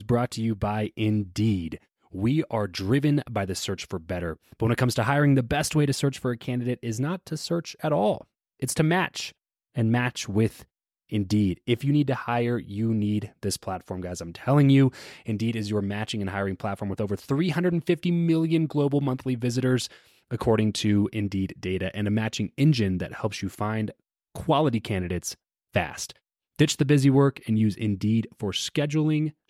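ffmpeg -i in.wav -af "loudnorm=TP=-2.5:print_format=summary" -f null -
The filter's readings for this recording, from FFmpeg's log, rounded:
Input Integrated:    -25.6 LUFS
Input True Peak:      -8.5 dBTP
Input LRA:             3.5 LU
Input Threshold:     -35.8 LUFS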